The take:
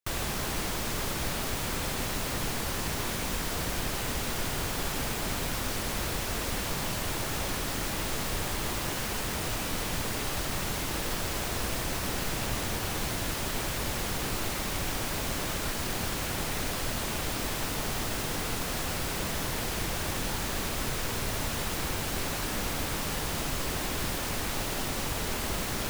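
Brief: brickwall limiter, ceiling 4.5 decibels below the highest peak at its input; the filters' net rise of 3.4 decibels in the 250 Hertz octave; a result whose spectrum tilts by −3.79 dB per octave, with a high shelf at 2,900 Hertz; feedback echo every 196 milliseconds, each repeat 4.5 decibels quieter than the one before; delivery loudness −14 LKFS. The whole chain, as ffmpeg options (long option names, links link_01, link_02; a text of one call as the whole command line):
ffmpeg -i in.wav -af "equalizer=frequency=250:width_type=o:gain=4.5,highshelf=frequency=2900:gain=-3,alimiter=limit=-22.5dB:level=0:latency=1,aecho=1:1:196|392|588|784|980|1176|1372|1568|1764:0.596|0.357|0.214|0.129|0.0772|0.0463|0.0278|0.0167|0.01,volume=17dB" out.wav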